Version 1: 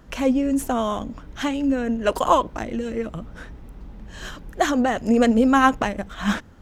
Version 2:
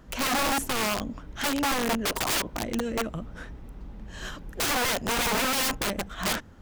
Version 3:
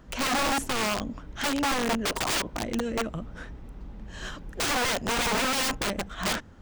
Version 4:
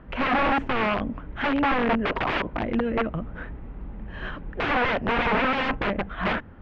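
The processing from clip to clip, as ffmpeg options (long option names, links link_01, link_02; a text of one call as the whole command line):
ffmpeg -i in.wav -af "aeval=exprs='(mod(8.91*val(0)+1,2)-1)/8.91':channel_layout=same,volume=-2dB" out.wav
ffmpeg -i in.wav -af "equalizer=frequency=13000:width_type=o:width=0.41:gain=-11" out.wav
ffmpeg -i in.wav -af "lowpass=frequency=2600:width=0.5412,lowpass=frequency=2600:width=1.3066,volume=4.5dB" out.wav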